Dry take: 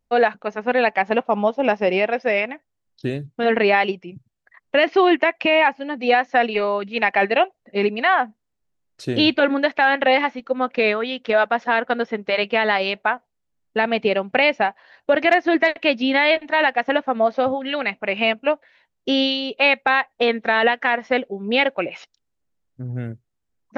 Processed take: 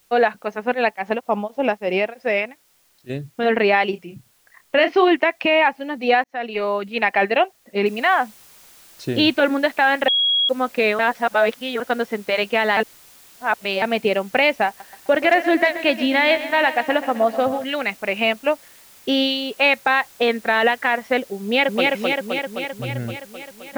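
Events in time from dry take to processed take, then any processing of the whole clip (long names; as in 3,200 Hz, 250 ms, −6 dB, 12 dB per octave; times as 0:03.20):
0:00.73–0:03.09: tremolo along a rectified sine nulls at 4.7 Hz → 1.8 Hz
0:03.90–0:05.08: double-tracking delay 30 ms −9 dB
0:06.24–0:06.71: fade in
0:07.86: noise floor change −60 dB −48 dB
0:10.08–0:10.49: beep over 3,310 Hz −15 dBFS
0:10.99–0:11.80: reverse
0:12.77–0:13.82: reverse
0:14.67–0:17.64: repeating echo 129 ms, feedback 60%, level −13.5 dB
0:21.42–0:21.87: delay throw 260 ms, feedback 70%, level −1.5 dB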